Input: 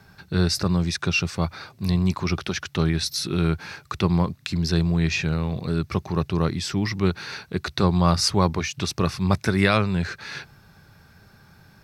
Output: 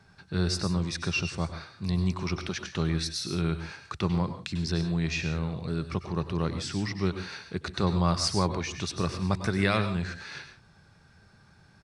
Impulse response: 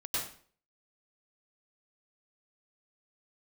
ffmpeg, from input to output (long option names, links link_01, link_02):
-filter_complex "[0:a]asplit=2[link_01][link_02];[1:a]atrim=start_sample=2205,afade=type=out:start_time=0.23:duration=0.01,atrim=end_sample=10584,highshelf=frequency=10000:gain=11.5[link_03];[link_02][link_03]afir=irnorm=-1:irlink=0,volume=-12dB[link_04];[link_01][link_04]amix=inputs=2:normalize=0,aresample=22050,aresample=44100,volume=-7.5dB"